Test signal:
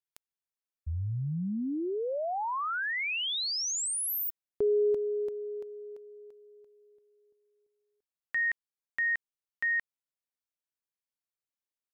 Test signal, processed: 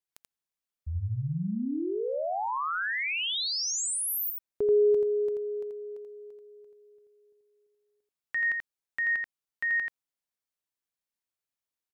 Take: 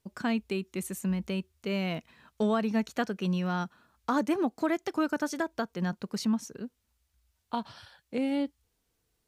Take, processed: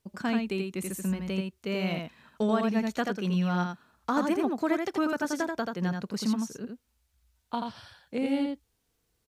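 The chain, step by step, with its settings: echo 84 ms -4 dB

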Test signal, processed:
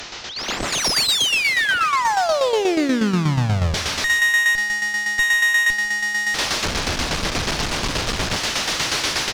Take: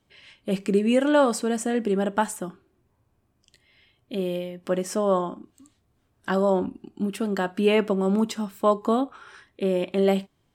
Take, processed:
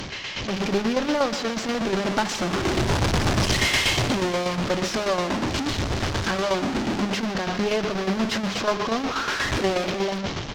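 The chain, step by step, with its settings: delta modulation 32 kbps, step -19.5 dBFS; AGC gain up to 16.5 dB; one-sided clip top -17 dBFS, bottom -3.5 dBFS; on a send: feedback echo 0.147 s, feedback 40%, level -14 dB; on the sum: tremolo saw down 8.3 Hz, depth 60%; gain -6 dB

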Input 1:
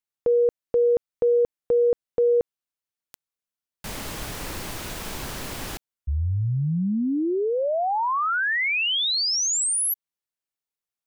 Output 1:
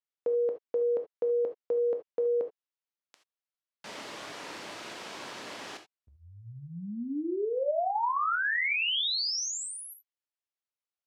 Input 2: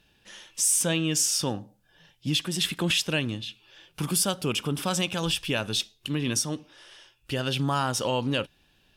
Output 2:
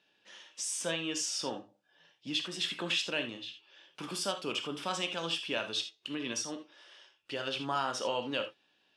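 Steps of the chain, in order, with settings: BPF 320–5400 Hz; non-linear reverb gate 0.1 s flat, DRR 5.5 dB; gain -6 dB

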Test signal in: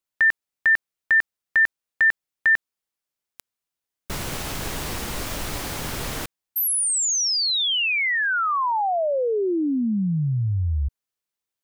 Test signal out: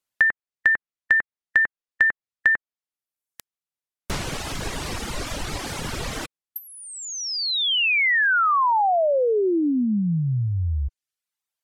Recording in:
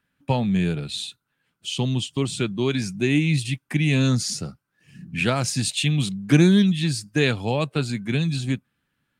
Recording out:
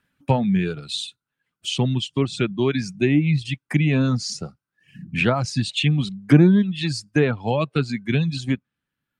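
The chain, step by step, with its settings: reverb removal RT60 1.4 s; treble ducked by the level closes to 1400 Hz, closed at -16.5 dBFS; gain +3.5 dB

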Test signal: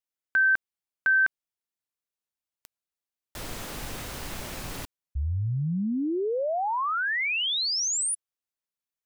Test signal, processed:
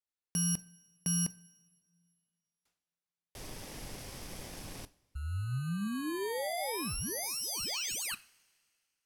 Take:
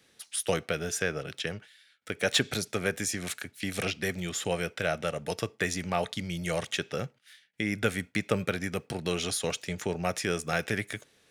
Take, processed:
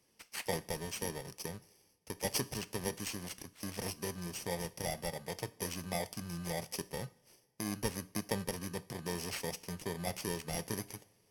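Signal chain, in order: FFT order left unsorted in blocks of 32 samples; two-slope reverb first 0.38 s, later 2.2 s, from -19 dB, DRR 14.5 dB; decimation joined by straight lines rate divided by 2×; gain -8 dB

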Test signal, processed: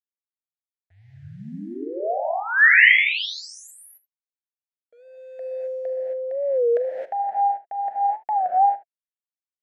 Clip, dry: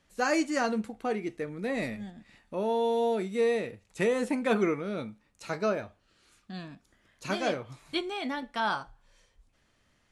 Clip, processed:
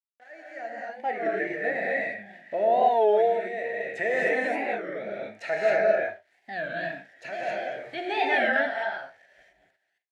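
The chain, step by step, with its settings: opening faded in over 2.71 s; in parallel at -1 dB: compressor, threshold -33 dBFS; on the sum: limiter -24 dBFS; AGC gain up to 15.5 dB; sample gate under -38 dBFS; double band-pass 1100 Hz, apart 1.4 oct; tremolo 0.73 Hz, depth 71%; early reflections 41 ms -16 dB, 76 ms -17.5 dB; non-linear reverb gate 0.29 s rising, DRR -4 dB; record warp 33 1/3 rpm, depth 160 cents

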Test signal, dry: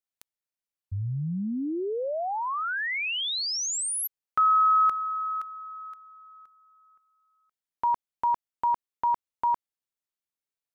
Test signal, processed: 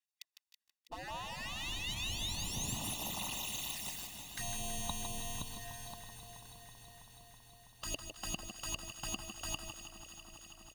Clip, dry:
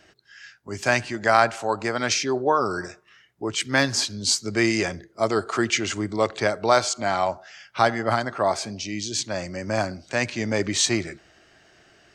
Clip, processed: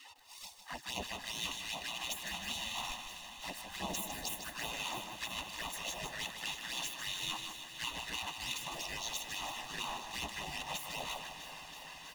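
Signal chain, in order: half-waves squared off; RIAA curve playback; notch 2200 Hz, Q 6.2; spectral gate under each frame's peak -25 dB weak; comb 1.1 ms, depth 59%; reverse; compressor 20:1, threshold -44 dBFS; reverse; LFO notch sine 2.4 Hz 380–1700 Hz; envelope flanger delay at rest 3.7 ms, full sweep at -46.5 dBFS; on a send: echo with dull and thin repeats by turns 0.163 s, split 1400 Hz, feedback 90%, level -11 dB; on the sum: lo-fi delay 0.154 s, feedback 35%, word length 12-bit, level -8 dB; gain +11.5 dB

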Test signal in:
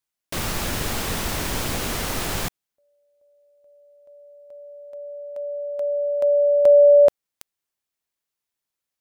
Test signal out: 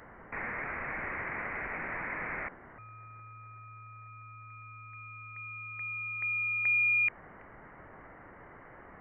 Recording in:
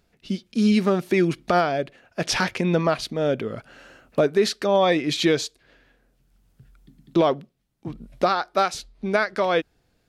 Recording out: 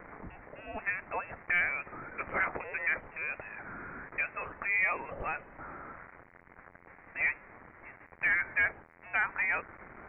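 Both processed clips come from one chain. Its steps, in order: switching spikes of -18.5 dBFS; ladder high-pass 750 Hz, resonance 35%; sine folder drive 3 dB, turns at -13.5 dBFS; inverted band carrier 3000 Hz; gain -6 dB

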